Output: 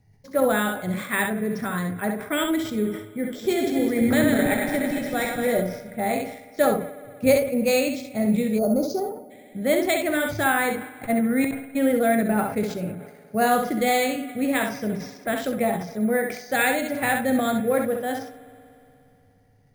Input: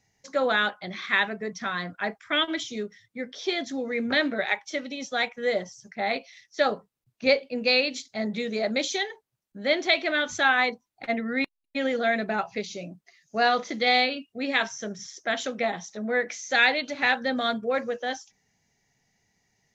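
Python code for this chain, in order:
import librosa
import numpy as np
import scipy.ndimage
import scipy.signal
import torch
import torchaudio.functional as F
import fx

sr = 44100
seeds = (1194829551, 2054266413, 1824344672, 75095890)

y = fx.reverse_delay_fb(x, sr, ms=112, feedback_pct=72, wet_db=-4.5, at=(3.23, 5.6))
y = fx.peak_eq(y, sr, hz=110.0, db=9.0, octaves=0.58)
y = fx.hum_notches(y, sr, base_hz=60, count=2)
y = fx.room_early_taps(y, sr, ms=(38, 66), db=(-16.0, -6.0))
y = fx.rev_spring(y, sr, rt60_s=3.1, pass_ms=(59,), chirp_ms=45, drr_db=16.0)
y = fx.spec_box(y, sr, start_s=8.59, length_s=0.71, low_hz=1500.0, high_hz=4300.0, gain_db=-29)
y = fx.tilt_eq(y, sr, slope=-3.5)
y = np.repeat(y[::4], 4)[:len(y)]
y = fx.sustainer(y, sr, db_per_s=87.0)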